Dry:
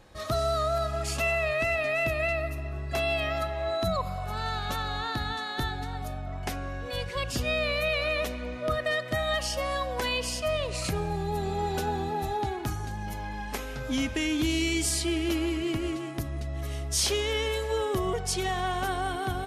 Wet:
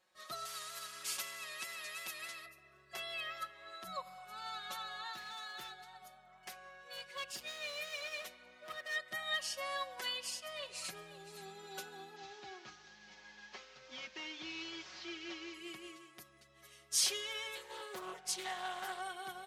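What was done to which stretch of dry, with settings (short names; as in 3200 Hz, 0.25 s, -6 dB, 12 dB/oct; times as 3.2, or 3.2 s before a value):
0.45–2.46 spectral compressor 2:1
5.13–8.96 hard clip -27 dBFS
10.04–11.02 echo throw 0.52 s, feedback 15%, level -11.5 dB
12.16–15.54 delta modulation 32 kbps, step -37.5 dBFS
17.55–19 Doppler distortion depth 0.48 ms
whole clip: HPF 1400 Hz 6 dB/oct; comb 5.4 ms, depth 88%; upward expander 1.5:1, over -44 dBFS; gain -6 dB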